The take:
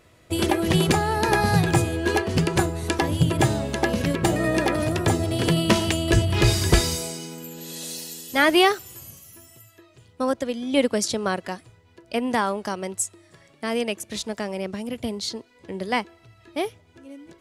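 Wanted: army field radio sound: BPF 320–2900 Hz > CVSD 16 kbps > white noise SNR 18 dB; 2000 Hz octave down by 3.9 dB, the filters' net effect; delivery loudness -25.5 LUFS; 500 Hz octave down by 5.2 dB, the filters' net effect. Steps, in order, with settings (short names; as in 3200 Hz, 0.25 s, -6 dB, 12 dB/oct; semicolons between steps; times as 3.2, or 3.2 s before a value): BPF 320–2900 Hz; bell 500 Hz -5.5 dB; bell 2000 Hz -3.5 dB; CVSD 16 kbps; white noise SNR 18 dB; gain +5.5 dB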